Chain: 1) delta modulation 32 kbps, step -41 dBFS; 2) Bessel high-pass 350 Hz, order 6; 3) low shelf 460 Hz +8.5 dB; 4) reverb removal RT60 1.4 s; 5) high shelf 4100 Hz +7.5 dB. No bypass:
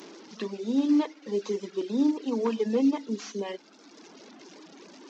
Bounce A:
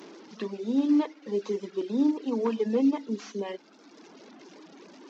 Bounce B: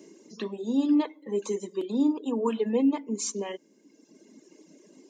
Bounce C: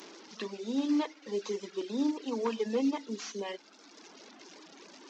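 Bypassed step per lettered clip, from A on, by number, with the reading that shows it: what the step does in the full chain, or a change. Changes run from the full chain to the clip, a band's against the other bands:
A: 5, 4 kHz band -3.0 dB; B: 1, 2 kHz band -1.5 dB; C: 3, 250 Hz band -5.0 dB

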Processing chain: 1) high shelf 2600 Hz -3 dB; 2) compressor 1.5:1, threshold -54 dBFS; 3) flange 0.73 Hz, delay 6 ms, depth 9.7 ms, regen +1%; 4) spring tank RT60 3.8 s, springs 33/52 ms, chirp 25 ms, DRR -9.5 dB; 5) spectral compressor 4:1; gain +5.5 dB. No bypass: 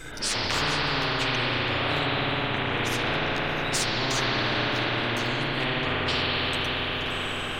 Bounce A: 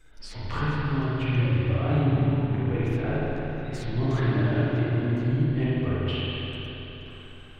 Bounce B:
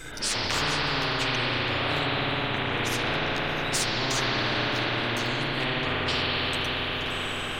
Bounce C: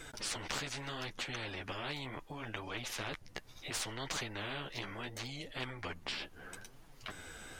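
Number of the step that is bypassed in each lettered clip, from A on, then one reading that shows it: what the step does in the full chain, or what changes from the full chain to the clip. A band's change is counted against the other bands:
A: 5, 125 Hz band +17.0 dB; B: 1, 8 kHz band +1.5 dB; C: 4, momentary loudness spread change +8 LU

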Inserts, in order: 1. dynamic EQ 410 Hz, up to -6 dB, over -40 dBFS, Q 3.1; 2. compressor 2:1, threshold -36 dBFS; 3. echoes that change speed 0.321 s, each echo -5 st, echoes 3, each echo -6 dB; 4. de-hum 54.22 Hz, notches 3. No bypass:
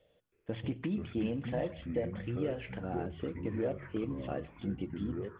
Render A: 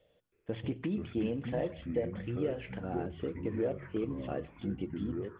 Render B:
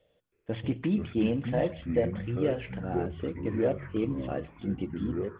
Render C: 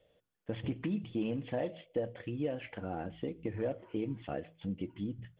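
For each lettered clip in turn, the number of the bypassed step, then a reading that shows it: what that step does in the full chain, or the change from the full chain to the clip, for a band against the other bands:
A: 1, 500 Hz band +2.0 dB; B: 2, mean gain reduction 4.0 dB; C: 3, loudness change -1.0 LU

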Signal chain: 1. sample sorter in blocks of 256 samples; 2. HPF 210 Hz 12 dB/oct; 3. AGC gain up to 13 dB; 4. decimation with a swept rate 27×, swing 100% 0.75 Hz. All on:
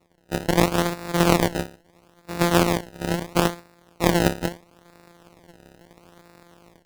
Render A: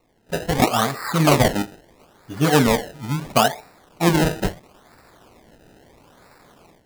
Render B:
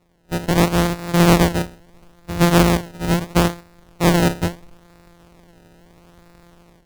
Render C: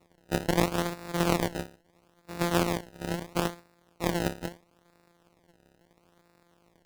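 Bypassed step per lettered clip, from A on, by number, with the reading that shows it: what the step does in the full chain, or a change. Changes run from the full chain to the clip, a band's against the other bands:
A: 1, crest factor change -4.0 dB; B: 2, 125 Hz band +4.0 dB; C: 3, momentary loudness spread change +1 LU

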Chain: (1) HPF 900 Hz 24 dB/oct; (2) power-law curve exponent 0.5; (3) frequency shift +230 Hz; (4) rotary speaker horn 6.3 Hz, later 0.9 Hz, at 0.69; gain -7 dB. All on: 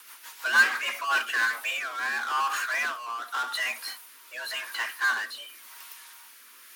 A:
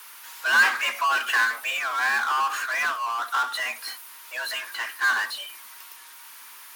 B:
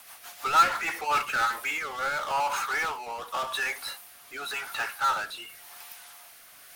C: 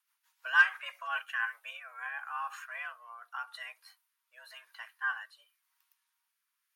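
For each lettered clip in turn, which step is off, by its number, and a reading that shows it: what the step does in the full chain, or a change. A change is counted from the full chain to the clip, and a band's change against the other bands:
4, 1 kHz band +2.0 dB; 3, 2 kHz band -9.5 dB; 2, crest factor change +5.0 dB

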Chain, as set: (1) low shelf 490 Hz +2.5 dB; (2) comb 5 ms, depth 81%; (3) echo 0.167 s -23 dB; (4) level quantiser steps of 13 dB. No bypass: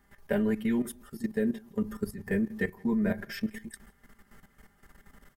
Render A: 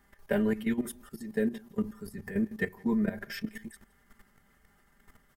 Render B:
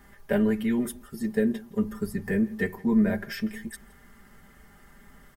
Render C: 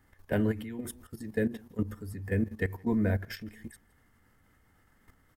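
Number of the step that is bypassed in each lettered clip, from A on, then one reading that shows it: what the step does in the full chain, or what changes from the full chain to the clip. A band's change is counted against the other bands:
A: 1, loudness change -1.5 LU; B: 4, loudness change +4.0 LU; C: 2, 125 Hz band +7.0 dB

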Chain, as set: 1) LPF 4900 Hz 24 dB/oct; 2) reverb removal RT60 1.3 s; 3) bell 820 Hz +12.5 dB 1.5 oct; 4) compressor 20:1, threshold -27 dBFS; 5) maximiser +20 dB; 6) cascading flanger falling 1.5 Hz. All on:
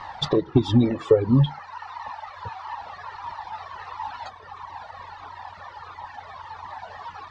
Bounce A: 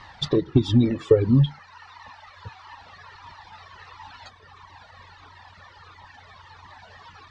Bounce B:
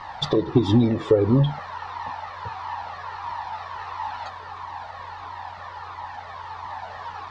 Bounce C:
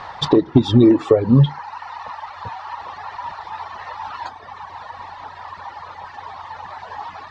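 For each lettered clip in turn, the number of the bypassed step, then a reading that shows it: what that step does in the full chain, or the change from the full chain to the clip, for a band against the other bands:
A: 3, 1 kHz band -10.0 dB; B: 2, 1 kHz band +2.5 dB; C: 6, 250 Hz band +2.5 dB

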